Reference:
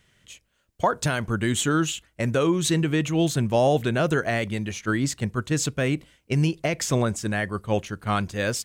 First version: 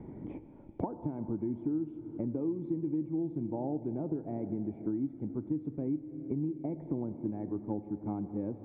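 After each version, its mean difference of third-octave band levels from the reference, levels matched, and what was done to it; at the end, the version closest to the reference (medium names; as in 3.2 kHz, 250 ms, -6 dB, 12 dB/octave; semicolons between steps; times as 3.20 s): 14.5 dB: compression 1.5:1, threshold -39 dBFS, peak gain reduction 8.5 dB; cascade formant filter u; Schroeder reverb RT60 3.7 s, combs from 26 ms, DRR 11.5 dB; three bands compressed up and down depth 100%; trim +3.5 dB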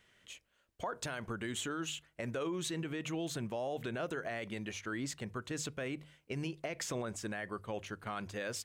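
4.0 dB: tone controls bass -8 dB, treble -5 dB; hum notches 50/100/150 Hz; peak limiter -21 dBFS, peak gain reduction 9.5 dB; compression 1.5:1, threshold -41 dBFS, peak gain reduction 6 dB; trim -3 dB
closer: second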